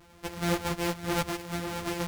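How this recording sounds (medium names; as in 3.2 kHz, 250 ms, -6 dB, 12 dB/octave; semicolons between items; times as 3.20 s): a buzz of ramps at a fixed pitch in blocks of 256 samples; tremolo triangle 1.9 Hz, depth 45%; a shimmering, thickened sound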